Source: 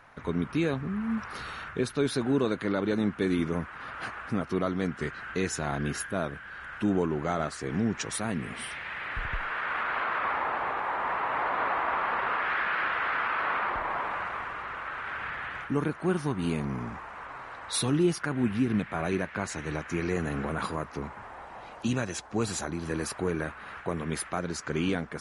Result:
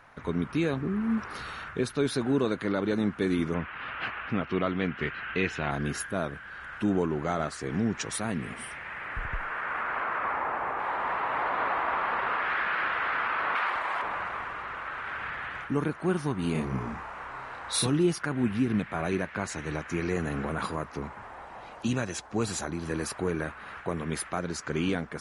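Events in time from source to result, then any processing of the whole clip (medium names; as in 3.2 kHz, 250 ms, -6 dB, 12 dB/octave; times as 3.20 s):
0.77–1.33 s: peaking EQ 350 Hz +11 dB 0.7 oct
3.54–5.71 s: resonant low-pass 2.8 kHz, resonance Q 2.8
8.54–10.80 s: peaking EQ 3.9 kHz -10 dB 1 oct
13.55–14.02 s: tilt EQ +3.5 dB/octave
16.52–17.87 s: doubling 31 ms -2.5 dB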